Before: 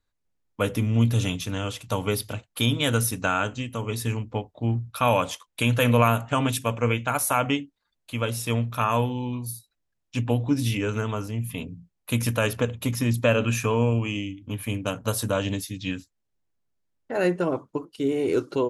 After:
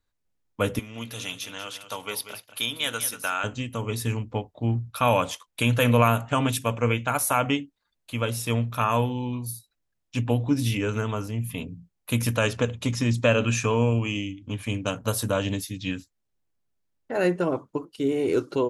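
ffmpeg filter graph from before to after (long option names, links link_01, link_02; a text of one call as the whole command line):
ffmpeg -i in.wav -filter_complex "[0:a]asettb=1/sr,asplit=3[link_01][link_02][link_03];[link_01]atrim=end=0.794[link_04];[link_02]atrim=start=0.79:end=3.44,asetpts=PTS-STARTPTS,afade=type=in:duration=0.004:curve=qsin,afade=type=out:start_time=2.646:duration=0.004:curve=qsin,highpass=frequency=1300:poles=1,equalizer=frequency=7500:width=7.1:gain=-7,aecho=1:1:189:0.266,atrim=end_sample=116865[link_05];[link_03]atrim=start=3.436[link_06];[link_04][link_05]acrossfade=duration=0.004:curve1=hsin:curve2=qsin[link_07];[link_07][link_06]acrossfade=duration=0.004:curve1=qsin:curve2=hsin,asettb=1/sr,asplit=3[link_08][link_09][link_10];[link_08]atrim=end=12.364[link_11];[link_09]atrim=start=12.36:end=14.96,asetpts=PTS-STARTPTS,afade=type=in:duration=0.004:curve=qsin,afade=type=out:start_time=2.596:duration=0.004:curve=qsin,lowpass=frequency=7700:width=0.5412,lowpass=frequency=7700:width=1.3066,highshelf=frequency=5300:gain=6.5[link_12];[link_10]atrim=start=14.956[link_13];[link_11][link_12]acrossfade=duration=0.004:curve1=hsin:curve2=qsin[link_14];[link_14][link_13]acrossfade=duration=0.004:curve1=qsin:curve2=hsin" out.wav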